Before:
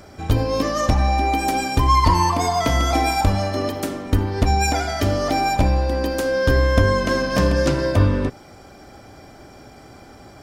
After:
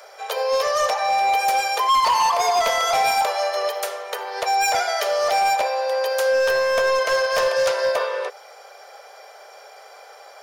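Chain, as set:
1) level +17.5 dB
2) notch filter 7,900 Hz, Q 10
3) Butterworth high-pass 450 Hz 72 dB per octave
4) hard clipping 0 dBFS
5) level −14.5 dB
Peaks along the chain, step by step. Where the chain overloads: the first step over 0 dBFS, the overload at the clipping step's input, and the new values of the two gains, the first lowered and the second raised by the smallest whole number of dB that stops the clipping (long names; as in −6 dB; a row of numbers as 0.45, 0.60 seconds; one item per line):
+13.0, +13.0, +9.0, 0.0, −14.5 dBFS
step 1, 9.0 dB
step 1 +8.5 dB, step 5 −5.5 dB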